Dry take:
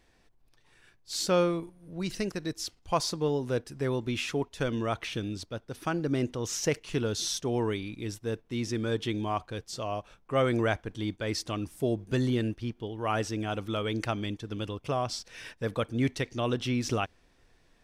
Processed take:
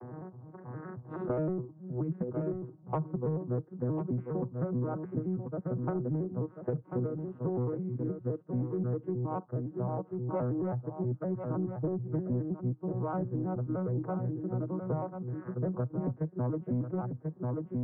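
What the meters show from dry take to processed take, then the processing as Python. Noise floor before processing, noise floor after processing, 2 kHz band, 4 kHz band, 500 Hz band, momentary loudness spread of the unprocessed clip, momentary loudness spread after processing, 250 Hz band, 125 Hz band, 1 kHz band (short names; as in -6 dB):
-65 dBFS, -54 dBFS, -19.0 dB, under -40 dB, -4.5 dB, 8 LU, 5 LU, -1.5 dB, +1.5 dB, -7.0 dB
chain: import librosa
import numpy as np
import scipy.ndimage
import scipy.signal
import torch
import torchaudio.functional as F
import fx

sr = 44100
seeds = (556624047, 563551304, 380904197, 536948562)

y = fx.vocoder_arp(x, sr, chord='major triad', root=47, every_ms=105)
y = scipy.signal.sosfilt(scipy.signal.butter(6, 1300.0, 'lowpass', fs=sr, output='sos'), y)
y = 10.0 ** (-21.0 / 20.0) * np.tanh(y / 10.0 ** (-21.0 / 20.0))
y = y + 10.0 ** (-9.5 / 20.0) * np.pad(y, (int(1039 * sr / 1000.0), 0))[:len(y)]
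y = fx.band_squash(y, sr, depth_pct=100)
y = y * 10.0 ** (-1.5 / 20.0)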